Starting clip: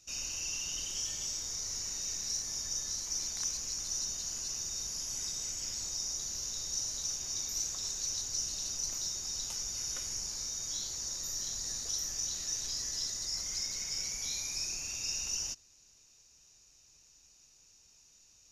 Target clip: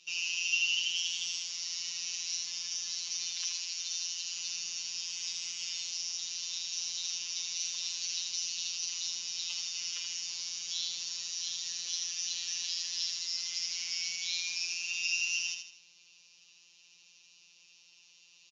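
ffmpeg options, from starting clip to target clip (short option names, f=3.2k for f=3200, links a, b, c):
-filter_complex "[0:a]acrossover=split=1400[a][b];[a]acompressor=threshold=-58dB:ratio=6[c];[b]aexciter=amount=4.3:drive=5.9:freq=2.4k[d];[c][d]amix=inputs=2:normalize=0,asettb=1/sr,asplit=3[e][f][g];[e]atrim=end=3.354[h];[f]atrim=start=3.35:end=4.37,asetpts=PTS-STARTPTS,afade=t=in:d=0.004:c=qsin,afade=t=out:st=1.016:d=0.004:c=qsin,lowshelf=f=460:g=-7.5[i];[g]atrim=start=4.366[j];[h][i]acrossfade=d=0.004:c1=hsin:c2=qsin[k];[k][j]acrossfade=d=0.004:c1=qsin:c2=hsin,aecho=1:1:80|160|240|320|400:0.531|0.212|0.0849|0.034|0.0136,afftfilt=real='hypot(re,im)*cos(PI*b)':imag='0':win_size=1024:overlap=0.75,highpass=f=100:w=0.5412,highpass=f=100:w=1.3066,equalizer=f=150:t=q:w=4:g=-6,equalizer=f=260:t=q:w=4:g=-9,equalizer=f=680:t=q:w=4:g=-5,equalizer=f=1k:t=q:w=4:g=4,equalizer=f=2.8k:t=q:w=4:g=8,lowpass=f=4k:w=0.5412,lowpass=f=4k:w=1.3066"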